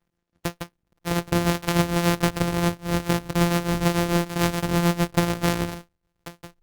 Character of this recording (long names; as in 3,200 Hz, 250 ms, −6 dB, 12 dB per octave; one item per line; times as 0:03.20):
a buzz of ramps at a fixed pitch in blocks of 256 samples
tremolo triangle 6.8 Hz, depth 65%
Opus